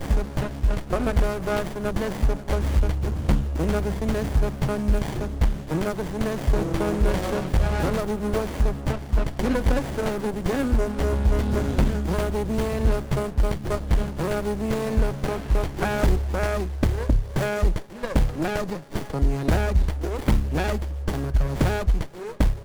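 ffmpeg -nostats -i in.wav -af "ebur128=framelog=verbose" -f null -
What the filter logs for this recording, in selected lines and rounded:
Integrated loudness:
  I:         -25.4 LUFS
  Threshold: -35.4 LUFS
Loudness range:
  LRA:         1.2 LU
  Threshold: -45.3 LUFS
  LRA low:   -25.8 LUFS
  LRA high:  -24.6 LUFS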